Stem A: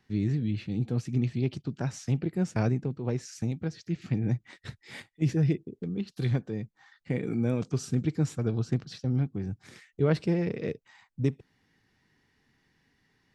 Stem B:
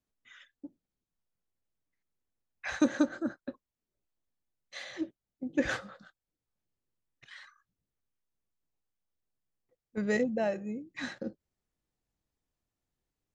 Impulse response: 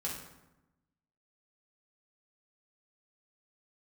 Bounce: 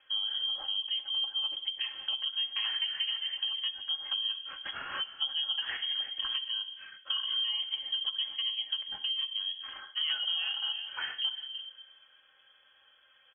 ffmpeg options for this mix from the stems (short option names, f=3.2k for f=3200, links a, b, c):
-filter_complex "[0:a]aecho=1:1:3.9:0.98,volume=2dB,asplit=2[a][b];[b]volume=-11dB[c];[1:a]volume=3dB,asplit=3[d][e][f];[e]volume=-11dB[g];[f]volume=-12.5dB[h];[2:a]atrim=start_sample=2205[i];[c][g]amix=inputs=2:normalize=0[j];[j][i]afir=irnorm=-1:irlink=0[k];[h]aecho=0:1:327:1[l];[a][d][k][l]amix=inputs=4:normalize=0,lowpass=f=2.9k:t=q:w=0.5098,lowpass=f=2.9k:t=q:w=0.6013,lowpass=f=2.9k:t=q:w=0.9,lowpass=f=2.9k:t=q:w=2.563,afreqshift=-3400,acompressor=threshold=-32dB:ratio=4"